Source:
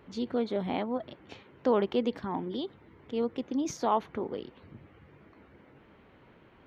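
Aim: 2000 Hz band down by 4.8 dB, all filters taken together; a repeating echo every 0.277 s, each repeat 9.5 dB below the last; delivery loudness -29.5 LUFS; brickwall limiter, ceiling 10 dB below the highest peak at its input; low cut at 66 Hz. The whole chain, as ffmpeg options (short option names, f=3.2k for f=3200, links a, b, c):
-af "highpass=66,equalizer=f=2k:t=o:g=-6.5,alimiter=level_in=0.5dB:limit=-24dB:level=0:latency=1,volume=-0.5dB,aecho=1:1:277|554|831|1108:0.335|0.111|0.0365|0.012,volume=6.5dB"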